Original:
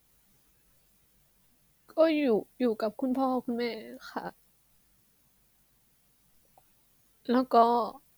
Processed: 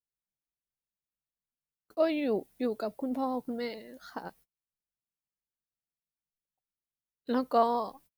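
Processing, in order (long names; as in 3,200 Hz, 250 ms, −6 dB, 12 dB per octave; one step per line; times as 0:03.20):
noise gate −53 dBFS, range −31 dB
level −3.5 dB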